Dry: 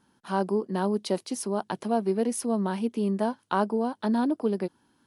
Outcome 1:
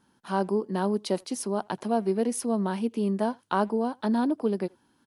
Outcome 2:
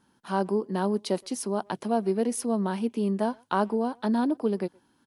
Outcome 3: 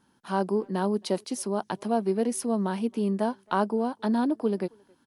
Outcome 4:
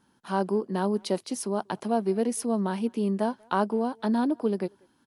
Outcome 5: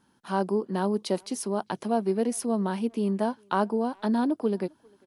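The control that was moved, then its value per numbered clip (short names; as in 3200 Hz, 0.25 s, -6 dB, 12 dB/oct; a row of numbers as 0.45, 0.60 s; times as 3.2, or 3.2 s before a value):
speakerphone echo, time: 80, 120, 270, 190, 400 ms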